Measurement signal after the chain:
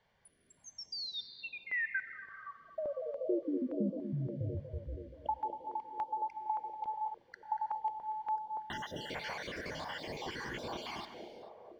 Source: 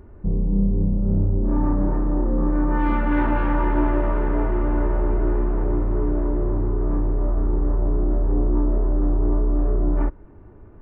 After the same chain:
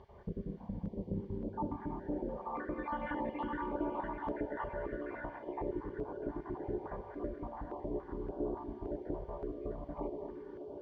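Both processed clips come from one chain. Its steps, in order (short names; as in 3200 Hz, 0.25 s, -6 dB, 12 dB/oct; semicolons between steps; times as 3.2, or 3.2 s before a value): random spectral dropouts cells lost 59%; low shelf 330 Hz -12 dB; compressor 10:1, threshold -35 dBFS; added noise pink -72 dBFS; air absorption 240 m; notch comb 1300 Hz; narrowing echo 0.239 s, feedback 84%, band-pass 460 Hz, level -5.5 dB; non-linear reverb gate 0.46 s flat, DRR 10.5 dB; stepped notch 3.5 Hz 300–1900 Hz; gain +5 dB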